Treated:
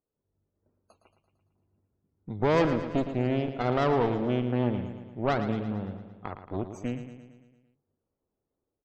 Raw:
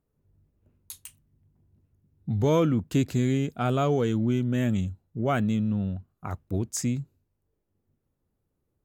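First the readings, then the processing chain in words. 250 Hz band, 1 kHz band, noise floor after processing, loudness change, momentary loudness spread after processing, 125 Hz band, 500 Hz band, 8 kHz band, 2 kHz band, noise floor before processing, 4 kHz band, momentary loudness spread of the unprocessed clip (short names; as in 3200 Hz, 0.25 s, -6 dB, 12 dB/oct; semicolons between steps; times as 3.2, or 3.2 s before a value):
-3.5 dB, +2.0 dB, under -85 dBFS, -2.0 dB, 15 LU, -5.5 dB, +0.5 dB, under -15 dB, +1.5 dB, -79 dBFS, -2.0 dB, 16 LU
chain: median filter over 25 samples; tone controls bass -13 dB, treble -1 dB; loudest bins only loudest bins 64; AGC gain up to 6 dB; added harmonics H 6 -13 dB, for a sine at -8 dBFS; on a send: feedback echo 0.113 s, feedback 58%, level -10 dB; on the sum: gain -5 dB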